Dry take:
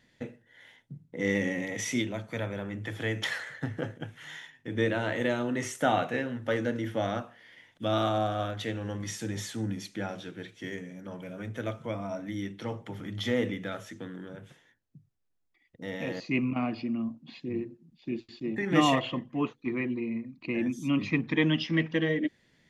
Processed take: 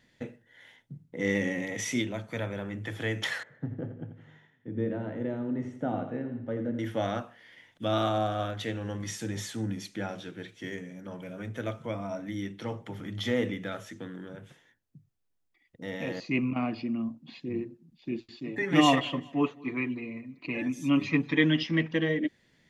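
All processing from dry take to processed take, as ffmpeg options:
-filter_complex "[0:a]asettb=1/sr,asplit=3[s0][s1][s2];[s0]atrim=end=3.434[s3];[s1]atrim=start=3.43:end=6.79,asetpts=PTS-STARTPTS,afade=t=in:d=0.004:c=qsin,afade=t=out:st=3.356:d=0.004:c=qsin,bandpass=f=180:t=q:w=0.66,aecho=1:1:85|170|255|340|425:0.316|0.152|0.0729|0.035|0.0168,atrim=end_sample=148176[s4];[s2]atrim=start=6.786[s5];[s3][s4]acrossfade=d=0.004:c1=hsin:c2=qsin[s6];[s6][s5]acrossfade=d=0.004:c1=qsin:c2=hsin,asettb=1/sr,asplit=3[s7][s8][s9];[s7]atrim=end=18.374[s10];[s8]atrim=start=18.37:end=21.63,asetpts=PTS-STARTPTS,afade=t=in:d=0.004:c=qsin,afade=t=out:st=3.256:d=0.004:c=qsin,lowshelf=f=110:g=-11.5,aecho=1:1:7:0.7,atrim=end_sample=143766,aecho=1:1:198|396|594:0.0668|0.0267|0.0107,atrim=end_sample=143766[s11];[s9]atrim=start=21.626[s12];[s10][s11]acrossfade=d=0.004:c1=hsin:c2=qsin[s13];[s13][s12]acrossfade=d=0.004:c1=qsin:c2=hsin"

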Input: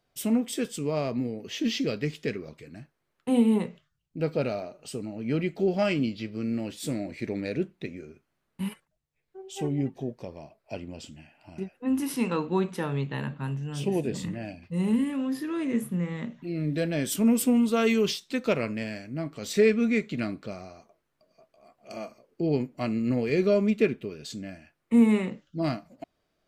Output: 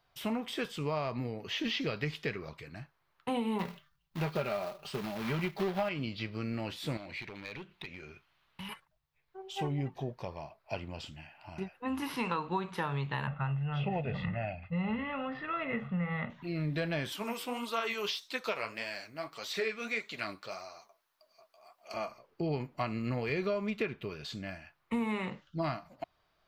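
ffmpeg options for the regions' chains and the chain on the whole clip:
-filter_complex "[0:a]asettb=1/sr,asplit=3[s0][s1][s2];[s0]atrim=end=3.594[s3];[s1]atrim=start=3.59:end=5.89,asetpts=PTS-STARTPTS,afade=t=in:d=0.004:c=qsin,afade=t=out:st=2.296:d=0.004:c=qsin,aecho=1:1:5.1:0.63,atrim=end_sample=101430,acrusher=bits=3:mode=log:mix=0:aa=0.000001[s4];[s2]atrim=start=5.886[s5];[s3][s4]acrossfade=d=0.004:c1=hsin:c2=qsin[s6];[s6][s5]acrossfade=d=0.004:c1=qsin:c2=hsin,asettb=1/sr,asplit=3[s7][s8][s9];[s7]atrim=end=6.974[s10];[s8]atrim=start=6.97:end=8.69,asetpts=PTS-STARTPTS,afade=t=in:d=0.004:c=qsin,afade=t=out:st=1.716:d=0.004:c=qsin,equalizer=f=3100:t=o:w=1.4:g=10.5,acompressor=threshold=0.00891:ratio=3:attack=3.2:release=140:knee=1:detection=peak,asoftclip=type=hard:threshold=0.0158[s11];[s9]atrim=start=8.686[s12];[s10][s11]acrossfade=d=0.004:c1=hsin:c2=qsin[s13];[s13][s12]acrossfade=d=0.004:c1=qsin:c2=hsin,asettb=1/sr,asplit=3[s14][s15][s16];[s14]atrim=end=13.274[s17];[s15]atrim=start=13.27:end=16.3,asetpts=PTS-STARTPTS,afade=t=in:d=0.004:c=qsin,afade=t=out:st=3.026:d=0.004:c=qsin,lowpass=f=2800:w=0.5412,lowpass=f=2800:w=1.3066,aecho=1:1:1.5:0.71,atrim=end_sample=133623[s18];[s16]atrim=start=16.296[s19];[s17][s18]acrossfade=d=0.004:c1=hsin:c2=qsin[s20];[s20][s19]acrossfade=d=0.004:c1=qsin:c2=hsin,asettb=1/sr,asplit=3[s21][s22][s23];[s21]atrim=end=17.124[s24];[s22]atrim=start=17.12:end=21.94,asetpts=PTS-STARTPTS,afade=t=in:d=0.004:c=qsin,afade=t=out:st=4.816:d=0.004:c=qsin,bass=f=250:g=-14,treble=f=4000:g=11,flanger=delay=3.1:depth=7.5:regen=41:speed=1.7:shape=sinusoidal[s25];[s23]atrim=start=21.936[s26];[s24][s25]acrossfade=d=0.004:c1=hsin:c2=qsin[s27];[s27][s26]acrossfade=d=0.004:c1=qsin:c2=hsin,acrossover=split=3500[s28][s29];[s29]acompressor=threshold=0.00501:ratio=4:attack=1:release=60[s30];[s28][s30]amix=inputs=2:normalize=0,equalizer=f=250:t=o:w=1:g=-10,equalizer=f=500:t=o:w=1:g=-5,equalizer=f=1000:t=o:w=1:g=7,equalizer=f=4000:t=o:w=1:g=3,equalizer=f=8000:t=o:w=1:g=-9,acompressor=threshold=0.0251:ratio=6,volume=1.33"

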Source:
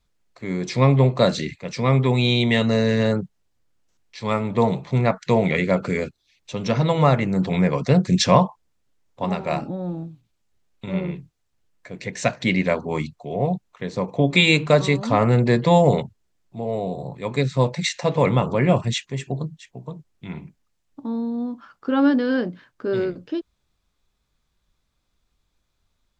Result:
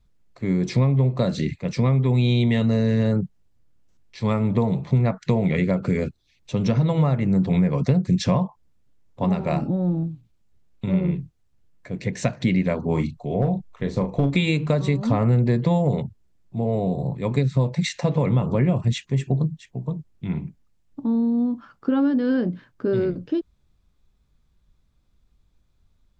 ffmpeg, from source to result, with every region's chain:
-filter_complex "[0:a]asettb=1/sr,asplit=3[s0][s1][s2];[s0]atrim=end=12.844[s3];[s1]atrim=start=12.84:end=14.36,asetpts=PTS-STARTPTS,afade=t=in:d=0.004:c=qsin,afade=t=out:st=1.516:d=0.004:c=qsin,asubboost=boost=10.5:cutoff=60,asoftclip=type=hard:threshold=0.2,asplit=2[s4][s5];[s5]adelay=36,volume=0.398[s6];[s4][s6]amix=inputs=2:normalize=0,atrim=end_sample=67032[s7];[s2]atrim=start=14.356[s8];[s3][s7]acrossfade=d=0.004:c1=hsin:c2=qsin[s9];[s9][s8]acrossfade=d=0.004:c1=qsin:c2=hsin,lowshelf=f=430:g=9,acompressor=threshold=0.158:ratio=6,bass=f=250:g=3,treble=f=4000:g=-1,volume=0.75"

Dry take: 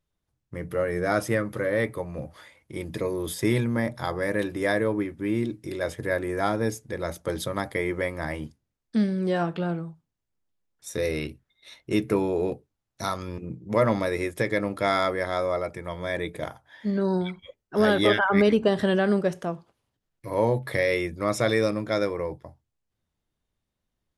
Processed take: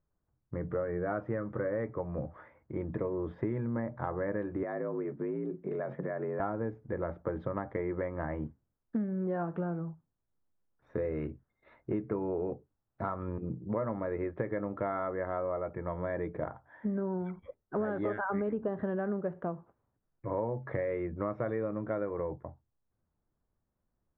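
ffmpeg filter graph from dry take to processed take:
-filter_complex "[0:a]asettb=1/sr,asplit=3[s0][s1][s2];[s0]atrim=end=4.634[s3];[s1]atrim=start=4.63:end=6.4,asetpts=PTS-STARTPTS,afade=t=in:d=0.004:c=qsin,afade=t=out:st=1.766:d=0.004:c=qsin,acompressor=threshold=0.0355:ratio=6:attack=3.2:release=140:knee=1:detection=peak,afreqshift=53[s4];[s2]atrim=start=6.396[s5];[s3][s4]acrossfade=d=0.004:c1=hsin:c2=qsin[s6];[s6][s5]acrossfade=d=0.004:c1=qsin:c2=hsin,lowpass=f=1500:w=0.5412,lowpass=f=1500:w=1.3066,acompressor=threshold=0.0316:ratio=6"

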